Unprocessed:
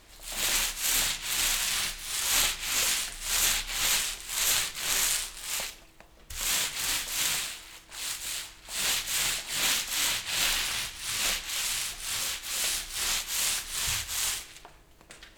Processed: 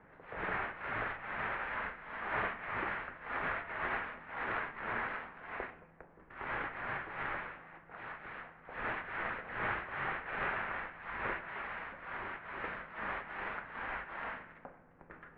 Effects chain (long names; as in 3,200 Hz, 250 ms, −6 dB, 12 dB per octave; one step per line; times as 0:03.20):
single-sideband voice off tune −160 Hz 160–2,000 Hz
hum removal 75.65 Hz, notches 40
level +1 dB